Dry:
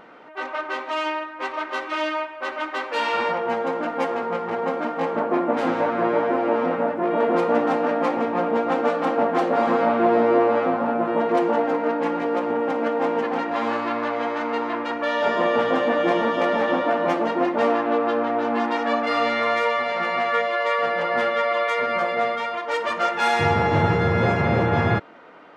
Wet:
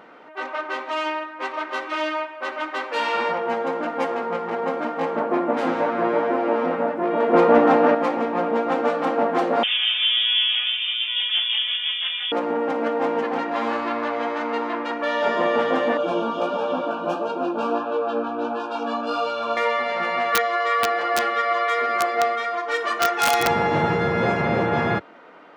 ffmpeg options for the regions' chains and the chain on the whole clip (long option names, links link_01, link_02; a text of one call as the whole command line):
ffmpeg -i in.wav -filter_complex "[0:a]asettb=1/sr,asplit=3[link_01][link_02][link_03];[link_01]atrim=end=7.334[link_04];[link_02]atrim=start=7.33:end=7.95,asetpts=PTS-STARTPTS,afade=type=in:duration=0.004:curve=qsin,afade=type=out:start_time=0.616:duration=0.004:curve=qsin,lowpass=frequency=3200:poles=1,acontrast=65[link_05];[link_03]atrim=start=7.946[link_06];[link_04][link_05]acrossfade=duration=0.004:curve1=hsin:curve2=qsin[link_07];[link_07][link_06]acrossfade=duration=0.004:curve1=qsin:curve2=hsin,asettb=1/sr,asplit=3[link_08][link_09][link_10];[link_08]atrim=end=9.634[link_11];[link_09]atrim=start=9.63:end=12.32,asetpts=PTS-STARTPTS,afade=type=in:duration=0.004:curve=qsin,afade=type=out:start_time=2.686:duration=0.004:curve=qsin,lowshelf=frequency=280:gain=-11.5,lowpass=frequency=3200:width_type=q:width=0.5098,lowpass=frequency=3200:width_type=q:width=0.6013,lowpass=frequency=3200:width_type=q:width=0.9,lowpass=frequency=3200:width_type=q:width=2.563,afreqshift=-3800[link_12];[link_10]atrim=start=12.316[link_13];[link_11][link_12]acrossfade=duration=0.004:curve1=hsin:curve2=qsin[link_14];[link_14][link_13]acrossfade=duration=0.004:curve1=qsin:curve2=hsin,asettb=1/sr,asplit=3[link_15][link_16][link_17];[link_15]atrim=end=15.974[link_18];[link_16]atrim=start=15.97:end=19.57,asetpts=PTS-STARTPTS,afade=type=in:duration=0.004:curve=qsin,afade=type=out:start_time=3.596:duration=0.004:curve=qsin,asuperstop=centerf=2000:order=20:qfactor=3.1,flanger=delay=15:depth=3.1:speed=1.5[link_19];[link_17]atrim=start=19.566[link_20];[link_18][link_19]acrossfade=duration=0.004:curve1=hsin:curve2=qsin[link_21];[link_21][link_20]acrossfade=duration=0.004:curve1=qsin:curve2=hsin,asettb=1/sr,asplit=3[link_22][link_23][link_24];[link_22]atrim=end=20.324[link_25];[link_23]atrim=start=20.32:end=23.48,asetpts=PTS-STARTPTS,afade=type=in:duration=0.004:curve=qsin,afade=type=out:start_time=3.156:duration=0.004:curve=qsin,lowshelf=frequency=360:gain=-5.5,aecho=1:1:2.7:0.8,atrim=end_sample=139356,aeval=exprs='(mod(3.35*val(0)+1,2)-1)/3.35':channel_layout=same[link_26];[link_24]atrim=start=23.476[link_27];[link_25][link_26]acrossfade=duration=0.004:curve1=hsin:curve2=qsin[link_28];[link_28][link_27]acrossfade=duration=0.004:curve1=qsin:curve2=hsin,highpass=48,equalizer=frequency=95:width=2.4:gain=-14" out.wav